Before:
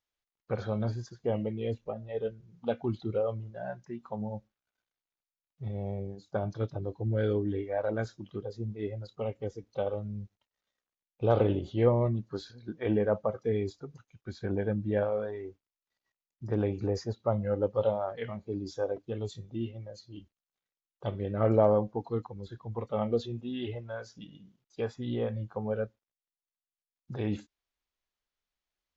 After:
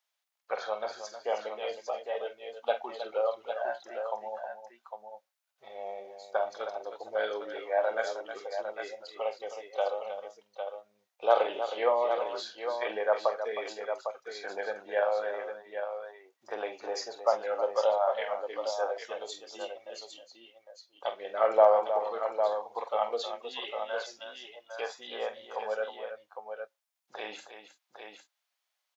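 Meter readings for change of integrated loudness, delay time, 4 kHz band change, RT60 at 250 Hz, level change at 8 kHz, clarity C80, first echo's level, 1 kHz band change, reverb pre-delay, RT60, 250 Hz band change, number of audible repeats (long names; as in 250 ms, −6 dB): 0.0 dB, 46 ms, +8.0 dB, no reverb audible, can't be measured, no reverb audible, −10.0 dB, +8.0 dB, no reverb audible, no reverb audible, −18.0 dB, 3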